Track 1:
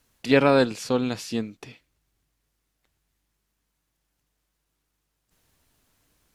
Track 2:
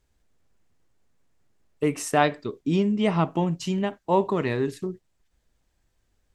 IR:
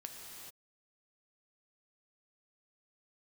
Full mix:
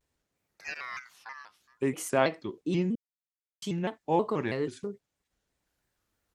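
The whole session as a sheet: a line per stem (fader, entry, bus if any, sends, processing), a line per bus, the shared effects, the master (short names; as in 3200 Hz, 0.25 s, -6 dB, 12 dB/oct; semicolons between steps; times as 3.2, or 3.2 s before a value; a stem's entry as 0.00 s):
-17.0 dB, 0.35 s, no send, high shelf 4600 Hz +8 dB; fixed phaser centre 3000 Hz, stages 4; ring modulator with a swept carrier 1700 Hz, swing 25%, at 0.42 Hz; auto duck -23 dB, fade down 0.40 s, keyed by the second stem
-4.5 dB, 0.00 s, muted 2.95–3.62, no send, dry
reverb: off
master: HPF 140 Hz 6 dB/oct; shaped vibrato square 3.1 Hz, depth 160 cents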